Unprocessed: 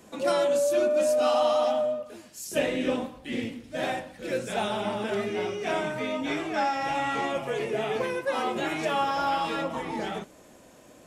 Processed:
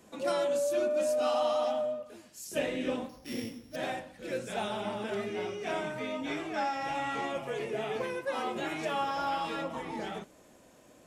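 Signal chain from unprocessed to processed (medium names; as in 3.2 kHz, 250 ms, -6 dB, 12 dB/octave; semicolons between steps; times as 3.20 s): 3.09–3.76 s: sorted samples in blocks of 8 samples; trim -5.5 dB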